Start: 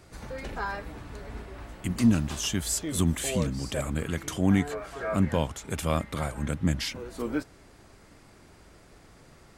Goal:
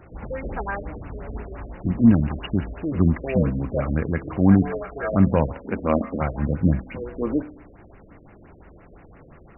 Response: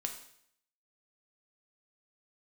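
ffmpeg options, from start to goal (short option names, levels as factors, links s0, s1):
-filter_complex "[0:a]asettb=1/sr,asplit=3[s0][s1][s2];[s0]atrim=end=5.574[s3];[s1]atrim=start=5.57:end=6.21,asetpts=PTS-STARTPTS,afade=t=in:d=0.004:c=qsin,afade=t=out:st=0.636:d=0.004:c=qsin,lowshelf=f=180:t=q:w=3:g=-6.5[s4];[s2]atrim=start=6.206[s5];[s3][s4]acrossfade=d=0.004:c1=hsin:c2=qsin[s6];[s6][s5]acrossfade=d=0.004:c1=qsin:c2=hsin,asplit=2[s7][s8];[1:a]atrim=start_sample=2205,lowpass=4000[s9];[s8][s9]afir=irnorm=-1:irlink=0,volume=0.794[s10];[s7][s10]amix=inputs=2:normalize=0,afftfilt=real='re*lt(b*sr/1024,610*pow(3000/610,0.5+0.5*sin(2*PI*5.8*pts/sr)))':imag='im*lt(b*sr/1024,610*pow(3000/610,0.5+0.5*sin(2*PI*5.8*pts/sr)))':win_size=1024:overlap=0.75,volume=1.26"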